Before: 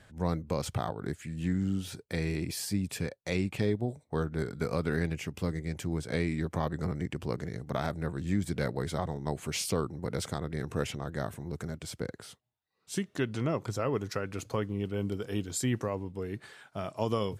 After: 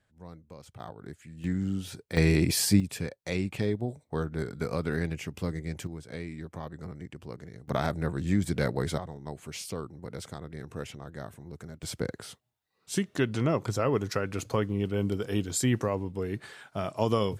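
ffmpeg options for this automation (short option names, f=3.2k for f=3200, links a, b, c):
-af "asetnsamples=n=441:p=0,asendcmd='0.8 volume volume -8dB;1.44 volume volume 0dB;2.17 volume volume 9.5dB;2.8 volume volume 0dB;5.87 volume volume -8dB;7.68 volume volume 3.5dB;8.98 volume volume -6dB;11.83 volume volume 4dB',volume=-16dB"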